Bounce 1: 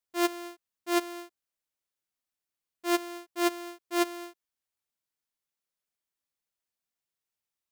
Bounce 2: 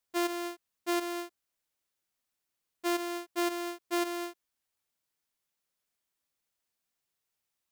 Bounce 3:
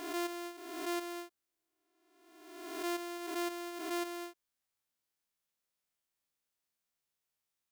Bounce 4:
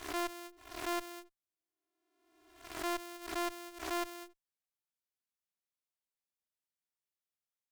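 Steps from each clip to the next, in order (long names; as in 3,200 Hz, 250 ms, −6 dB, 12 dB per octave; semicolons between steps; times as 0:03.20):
brickwall limiter −28 dBFS, peak gain reduction 11 dB; level +4.5 dB
peak hold with a rise ahead of every peak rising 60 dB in 1.33 s; level −6.5 dB
harmonic generator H 3 −20 dB, 4 −13 dB, 5 −25 dB, 7 −15 dB, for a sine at −27.5 dBFS; highs frequency-modulated by the lows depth 0.38 ms; level +1.5 dB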